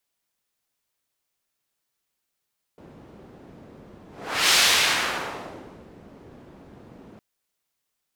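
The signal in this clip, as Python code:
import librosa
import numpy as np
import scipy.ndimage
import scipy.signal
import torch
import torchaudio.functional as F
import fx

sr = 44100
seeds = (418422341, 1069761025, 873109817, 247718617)

y = fx.whoosh(sr, seeds[0], length_s=4.41, peak_s=1.76, rise_s=0.49, fall_s=1.44, ends_hz=270.0, peak_hz=3800.0, q=0.83, swell_db=29.5)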